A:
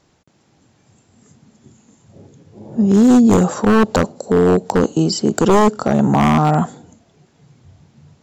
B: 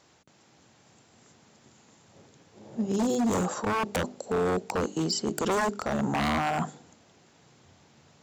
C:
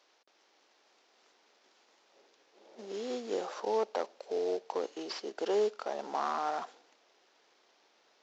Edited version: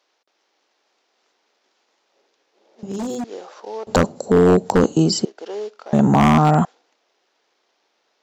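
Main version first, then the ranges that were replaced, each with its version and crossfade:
C
0:02.83–0:03.24: punch in from B
0:03.87–0:05.25: punch in from A
0:05.93–0:06.65: punch in from A

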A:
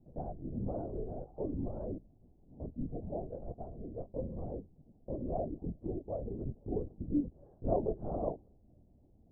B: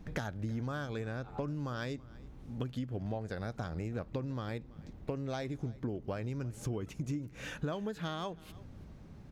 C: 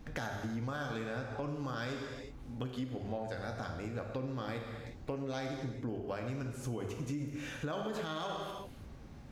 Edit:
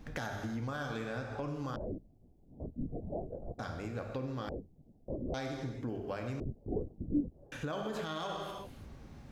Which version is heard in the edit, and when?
C
0:01.76–0:03.59: punch in from A
0:04.49–0:05.34: punch in from A
0:06.40–0:07.52: punch in from A
not used: B

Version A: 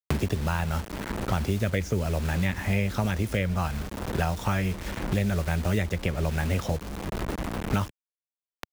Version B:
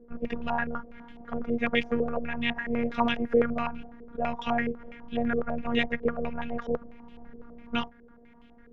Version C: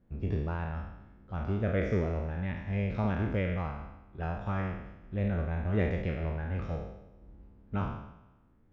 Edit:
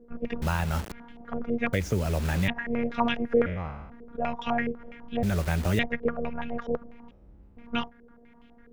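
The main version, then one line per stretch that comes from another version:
B
0:00.42–0:00.92: punch in from A
0:01.73–0:02.48: punch in from A
0:03.46–0:03.90: punch in from C
0:05.23–0:05.79: punch in from A
0:07.11–0:07.57: punch in from C

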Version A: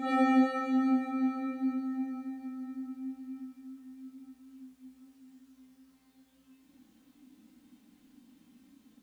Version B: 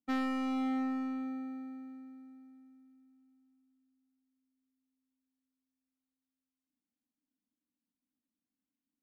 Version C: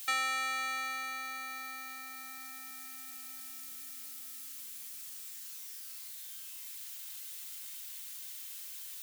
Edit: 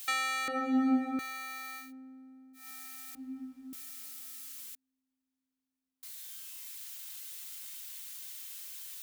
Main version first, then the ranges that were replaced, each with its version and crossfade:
C
0:00.48–0:01.19: punch in from A
0:01.85–0:02.61: punch in from B, crossfade 0.16 s
0:03.15–0:03.73: punch in from A
0:04.75–0:06.03: punch in from B

